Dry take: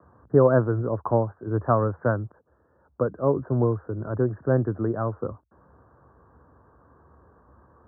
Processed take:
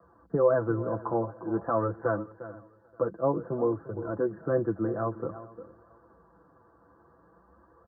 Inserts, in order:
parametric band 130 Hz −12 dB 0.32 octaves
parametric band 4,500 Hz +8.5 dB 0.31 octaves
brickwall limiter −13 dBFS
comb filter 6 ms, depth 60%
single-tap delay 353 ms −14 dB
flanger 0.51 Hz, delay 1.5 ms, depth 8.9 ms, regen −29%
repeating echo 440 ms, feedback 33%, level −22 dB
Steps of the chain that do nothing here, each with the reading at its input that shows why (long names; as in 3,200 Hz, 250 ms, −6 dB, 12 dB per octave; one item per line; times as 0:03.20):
parametric band 4,500 Hz: nothing at its input above 1,600 Hz